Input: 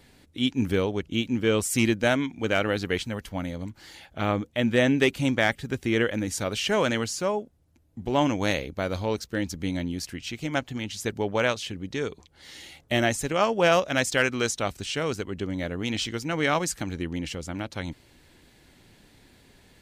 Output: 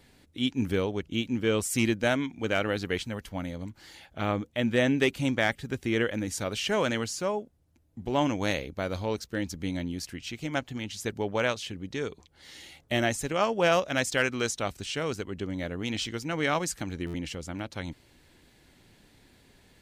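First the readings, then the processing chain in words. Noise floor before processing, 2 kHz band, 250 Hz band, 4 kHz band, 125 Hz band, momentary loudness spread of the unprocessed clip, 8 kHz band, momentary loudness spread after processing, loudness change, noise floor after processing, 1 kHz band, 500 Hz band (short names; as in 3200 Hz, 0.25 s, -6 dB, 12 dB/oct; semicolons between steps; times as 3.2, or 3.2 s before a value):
-59 dBFS, -3.0 dB, -3.0 dB, -3.0 dB, -3.0 dB, 11 LU, -3.0 dB, 11 LU, -3.0 dB, -62 dBFS, -3.0 dB, -3.0 dB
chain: stuck buffer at 17.06, samples 512, times 6; gain -3 dB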